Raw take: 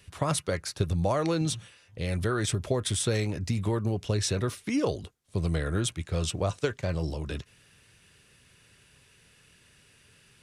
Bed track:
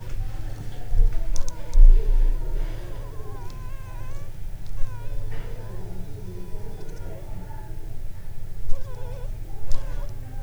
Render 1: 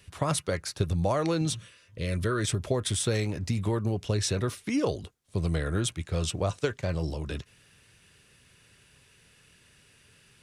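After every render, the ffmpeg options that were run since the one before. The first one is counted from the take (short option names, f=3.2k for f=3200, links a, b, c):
-filter_complex "[0:a]asettb=1/sr,asplit=3[a][b][c];[a]atrim=end=1.574[d];[b]atrim=start=1.57:end=2.46,asetpts=PTS-STARTPTS,afade=t=in:d=0.004:c=qsin,afade=t=out:st=0.886:d=0.004:c=qsin,asuperstop=centerf=790:order=12:qfactor=3.5[e];[c]atrim=start=2.456[f];[d][e]acrossfade=d=0.004:c1=hsin:c2=qsin[g];[g][f]acrossfade=d=0.004:c1=qsin:c2=hsin,asettb=1/sr,asplit=3[h][i][j];[h]atrim=end=3.004[k];[i]atrim=start=3:end=3.48,asetpts=PTS-STARTPTS,afade=t=in:d=0.004:c=qsin,afade=t=out:st=0.476:d=0.004:c=qsin,aeval=exprs='sgn(val(0))*max(abs(val(0))-0.00112,0)':c=same[l];[j]atrim=start=3.476[m];[k][l]acrossfade=d=0.004:c1=hsin:c2=qsin[n];[n][m]acrossfade=d=0.004:c1=qsin:c2=hsin"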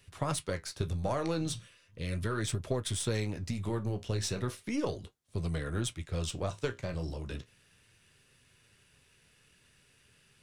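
-af "aeval=exprs='if(lt(val(0),0),0.708*val(0),val(0))':c=same,flanger=delay=7.6:depth=8.7:regen=-60:speed=0.36:shape=sinusoidal"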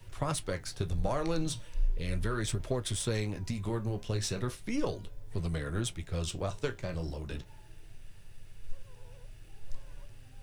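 -filter_complex "[1:a]volume=-17.5dB[a];[0:a][a]amix=inputs=2:normalize=0"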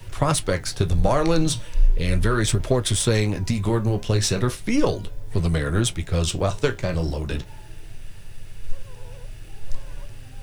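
-af "volume=12dB"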